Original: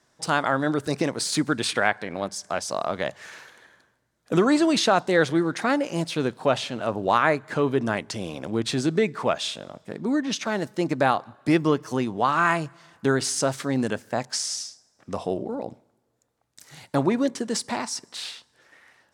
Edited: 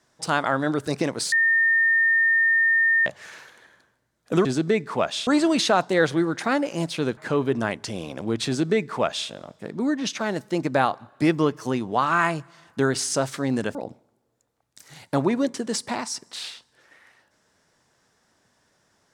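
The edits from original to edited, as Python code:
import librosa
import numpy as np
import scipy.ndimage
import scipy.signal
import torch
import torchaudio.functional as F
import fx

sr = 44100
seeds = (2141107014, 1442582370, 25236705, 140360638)

y = fx.edit(x, sr, fx.bleep(start_s=1.32, length_s=1.74, hz=1820.0, db=-16.0),
    fx.cut(start_s=6.35, length_s=1.08),
    fx.duplicate(start_s=8.73, length_s=0.82, to_s=4.45),
    fx.cut(start_s=14.01, length_s=1.55), tone=tone)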